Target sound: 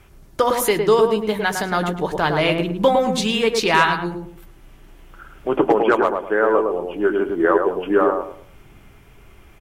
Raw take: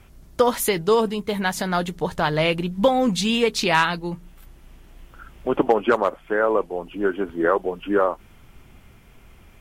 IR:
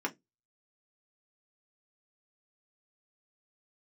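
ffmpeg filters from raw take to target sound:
-filter_complex "[0:a]asplit=2[link_01][link_02];[link_02]adelay=107,lowpass=frequency=1100:poles=1,volume=-3dB,asplit=2[link_03][link_04];[link_04]adelay=107,lowpass=frequency=1100:poles=1,volume=0.34,asplit=2[link_05][link_06];[link_06]adelay=107,lowpass=frequency=1100:poles=1,volume=0.34,asplit=2[link_07][link_08];[link_08]adelay=107,lowpass=frequency=1100:poles=1,volume=0.34[link_09];[link_01][link_03][link_05][link_07][link_09]amix=inputs=5:normalize=0,asplit=2[link_10][link_11];[1:a]atrim=start_sample=2205[link_12];[link_11][link_12]afir=irnorm=-1:irlink=0,volume=-13.5dB[link_13];[link_10][link_13]amix=inputs=2:normalize=0"

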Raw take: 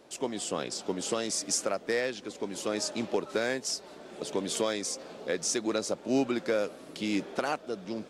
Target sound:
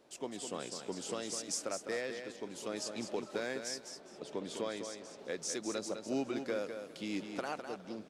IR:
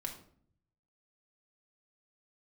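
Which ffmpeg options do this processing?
-filter_complex "[0:a]asettb=1/sr,asplit=3[link_01][link_02][link_03];[link_01]atrim=end=3.894[link_04];[link_02]atrim=start=3.89:end=5.19,asetpts=PTS-STARTPTS,afade=type=in:duration=0.004:curve=qsin,afade=type=out:start_time=1.296:duration=0.004:curve=qsin,highshelf=frequency=6400:gain=-11.5[link_05];[link_03]atrim=start=5.186[link_06];[link_04][link_05]acrossfade=duration=0.004:curve1=hsin:curve2=qsin[link_07];[link_07][link_06]acrossfade=duration=0.004:curve1=qsin:curve2=hsin,aecho=1:1:205|410|615:0.422|0.097|0.0223,volume=-8.5dB"

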